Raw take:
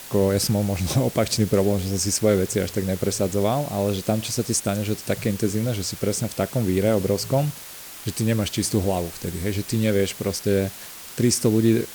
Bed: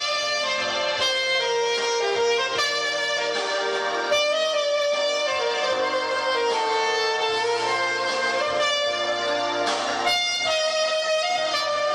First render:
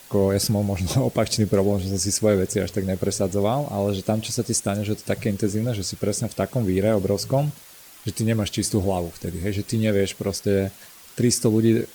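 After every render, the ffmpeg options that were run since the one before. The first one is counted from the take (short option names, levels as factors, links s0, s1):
-af "afftdn=nr=8:nf=-39"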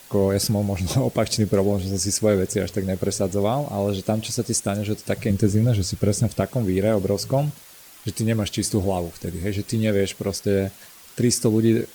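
-filter_complex "[0:a]asettb=1/sr,asplit=3[s0][s1][s2];[s0]atrim=end=5.304[s3];[s1]atrim=start=5.3:end=6.41,asetpts=PTS-STARTPTS,afade=t=in:d=0.004:c=qsin,afade=t=out:st=1.106:d=0.004:c=qsin,lowshelf=f=160:g=11[s4];[s2]atrim=start=6.406[s5];[s3][s4]acrossfade=d=0.004:c1=hsin:c2=qsin[s6];[s6][s5]acrossfade=d=0.004:c1=qsin:c2=hsin"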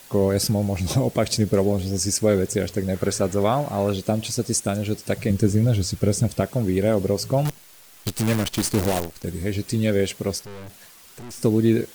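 -filter_complex "[0:a]asettb=1/sr,asplit=3[s0][s1][s2];[s0]atrim=end=2.944[s3];[s1]atrim=start=2.94:end=3.93,asetpts=PTS-STARTPTS,afade=t=in:d=0.004:c=qsin,afade=t=out:st=0.986:d=0.004:c=qsin,equalizer=f=1500:w=1.2:g=9[s4];[s2]atrim=start=3.926[s5];[s3][s4]acrossfade=d=0.004:c1=hsin:c2=qsin[s6];[s6][s5]acrossfade=d=0.004:c1=qsin:c2=hsin,asettb=1/sr,asplit=3[s7][s8][s9];[s7]atrim=end=7.454[s10];[s8]atrim=start=7.45:end=9.24,asetpts=PTS-STARTPTS,afade=t=in:d=0.004:c=qsin,afade=t=out:st=1.786:d=0.004:c=qsin,acrusher=bits=5:dc=4:mix=0:aa=0.000001[s11];[s9]atrim=start=9.236[s12];[s10][s11]acrossfade=d=0.004:c1=hsin:c2=qsin[s13];[s13][s12]acrossfade=d=0.004:c1=qsin:c2=hsin,asettb=1/sr,asplit=3[s14][s15][s16];[s14]atrim=end=10.434[s17];[s15]atrim=start=10.43:end=11.43,asetpts=PTS-STARTPTS,afade=t=in:d=0.004:c=qsin,afade=t=out:st=0.996:d=0.004:c=qsin,aeval=exprs='(tanh(70.8*val(0)+0.4)-tanh(0.4))/70.8':c=same[s18];[s16]atrim=start=11.426[s19];[s17][s18]acrossfade=d=0.004:c1=hsin:c2=qsin[s20];[s20][s19]acrossfade=d=0.004:c1=qsin:c2=hsin"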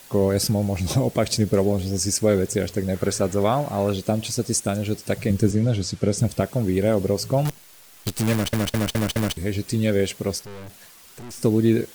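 -filter_complex "[0:a]asettb=1/sr,asplit=3[s0][s1][s2];[s0]atrim=end=5.514[s3];[s1]atrim=start=5.51:end=6.18,asetpts=PTS-STARTPTS,afade=t=in:d=0.004:c=qsin,afade=t=out:st=0.666:d=0.004:c=qsin,highpass=110,lowpass=7500[s4];[s2]atrim=start=6.176[s5];[s3][s4]acrossfade=d=0.004:c1=hsin:c2=qsin[s6];[s6][s5]acrossfade=d=0.004:c1=qsin:c2=hsin,asplit=6[s7][s8][s9][s10][s11][s12];[s7]atrim=end=8.532[s13];[s8]atrim=start=8.318:end=8.532[s14];[s9]atrim=start=8.318:end=8.532[s15];[s10]atrim=start=8.318:end=8.532[s16];[s11]atrim=start=8.318:end=8.532[s17];[s12]atrim=start=9.368[s18];[s13][s14]acrossfade=d=0.004:c1=hsin:c2=hsin[s19];[s19][s15]acrossfade=d=0.004:c1=hsin:c2=hsin[s20];[s20][s16]acrossfade=d=0.004:c1=hsin:c2=hsin[s21];[s21][s17]acrossfade=d=0.004:c1=hsin:c2=hsin[s22];[s22][s18]acrossfade=d=0.004:c1=hsin:c2=hsin"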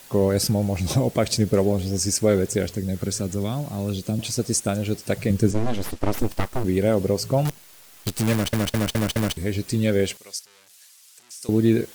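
-filter_complex "[0:a]asettb=1/sr,asplit=3[s0][s1][s2];[s0]atrim=end=2.674[s3];[s1]atrim=start=2.67:end=4.19,asetpts=PTS-STARTPTS,afade=t=in:d=0.004:c=qsin,afade=t=out:st=1.516:d=0.004:c=qsin,acrossover=split=310|3000[s4][s5][s6];[s5]acompressor=threshold=0.00631:ratio=2:attack=3.2:release=140:knee=2.83:detection=peak[s7];[s4][s7][s6]amix=inputs=3:normalize=0[s8];[s2]atrim=start=4.186[s9];[s3][s8]acrossfade=d=0.004:c1=hsin:c2=qsin[s10];[s10][s9]acrossfade=d=0.004:c1=qsin:c2=hsin,asplit=3[s11][s12][s13];[s11]afade=t=out:st=5.53:d=0.02[s14];[s12]aeval=exprs='abs(val(0))':c=same,afade=t=in:st=5.53:d=0.02,afade=t=out:st=6.63:d=0.02[s15];[s13]afade=t=in:st=6.63:d=0.02[s16];[s14][s15][s16]amix=inputs=3:normalize=0,asettb=1/sr,asplit=3[s17][s18][s19];[s17]atrim=end=10.174[s20];[s18]atrim=start=10.17:end=11.49,asetpts=PTS-STARTPTS,afade=t=in:d=0.004:c=qsin,afade=t=out:st=1.316:d=0.004:c=qsin,bandpass=f=7500:t=q:w=0.68[s21];[s19]atrim=start=11.486[s22];[s20][s21]acrossfade=d=0.004:c1=hsin:c2=qsin[s23];[s23][s22]acrossfade=d=0.004:c1=qsin:c2=hsin"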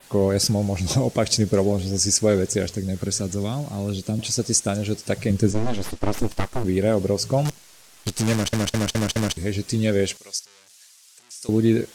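-af "lowpass=11000,adynamicequalizer=threshold=0.00794:dfrequency=6000:dqfactor=1.4:tfrequency=6000:tqfactor=1.4:attack=5:release=100:ratio=0.375:range=3:mode=boostabove:tftype=bell"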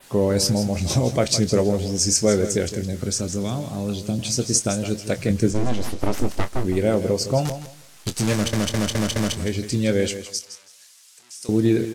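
-filter_complex "[0:a]asplit=2[s0][s1];[s1]adelay=24,volume=0.299[s2];[s0][s2]amix=inputs=2:normalize=0,aecho=1:1:163|326|489:0.266|0.0532|0.0106"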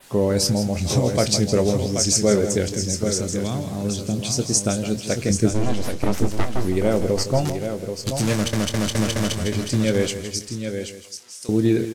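-af "aecho=1:1:782:0.422"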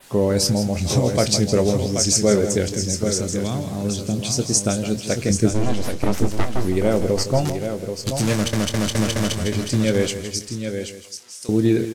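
-af "volume=1.12"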